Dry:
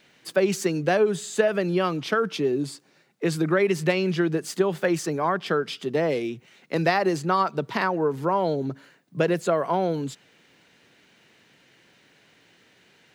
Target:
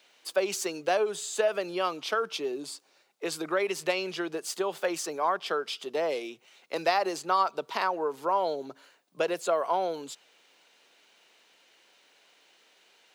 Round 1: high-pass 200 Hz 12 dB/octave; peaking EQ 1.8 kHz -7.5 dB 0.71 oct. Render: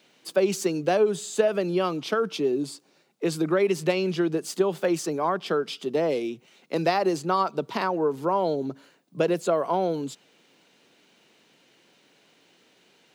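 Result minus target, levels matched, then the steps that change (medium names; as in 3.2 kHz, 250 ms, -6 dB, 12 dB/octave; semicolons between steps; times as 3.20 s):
250 Hz band +6.5 dB
change: high-pass 600 Hz 12 dB/octave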